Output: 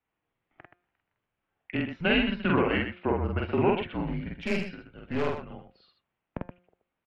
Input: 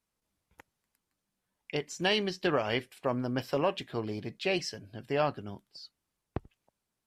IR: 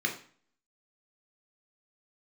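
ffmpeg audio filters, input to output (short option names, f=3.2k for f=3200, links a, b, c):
-filter_complex "[0:a]bandreject=f=175.4:t=h:w=4,bandreject=f=350.8:t=h:w=4,bandreject=f=526.2:t=h:w=4,bandreject=f=701.6:t=h:w=4,bandreject=f=877:t=h:w=4,bandreject=f=1.0524k:t=h:w=4,bandreject=f=1.2278k:t=h:w=4,bandreject=f=1.4032k:t=h:w=4,bandreject=f=1.5786k:t=h:w=4,bandreject=f=1.754k:t=h:w=4,bandreject=f=1.9294k:t=h:w=4,bandreject=f=2.1048k:t=h:w=4,bandreject=f=2.2802k:t=h:w=4,bandreject=f=2.4556k:t=h:w=4,bandreject=f=2.631k:t=h:w=4,highpass=f=240:t=q:w=0.5412,highpass=f=240:t=q:w=1.307,lowpass=f=3.1k:t=q:w=0.5176,lowpass=f=3.1k:t=q:w=0.7071,lowpass=f=3.1k:t=q:w=1.932,afreqshift=-170,asettb=1/sr,asplit=3[a][b][c];[a]atrim=end=4.404[d];[b]atrim=start=4.4:end=5.5,asetpts=PTS-STARTPTS,afade=t=in:d=0.004:c=qsin,afade=t=out:st=1.096:d=0.004:c=qsin,aeval=exprs='(tanh(25.1*val(0)+0.6)-tanh(0.6))/25.1':c=same[e];[c]atrim=start=5.496[f];[d][e]acrossfade=d=0.004:c1=hsin:c2=qsin[g];[g][f]acrossfade=d=0.004:c1=qsin:c2=hsin,aecho=1:1:46.65|125.4:0.891|0.398,volume=2.5dB"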